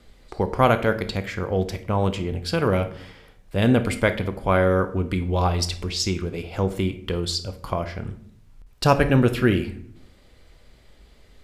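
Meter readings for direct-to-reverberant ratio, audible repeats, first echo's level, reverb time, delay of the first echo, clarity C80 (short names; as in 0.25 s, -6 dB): 9.5 dB, none, none, 0.60 s, none, 18.0 dB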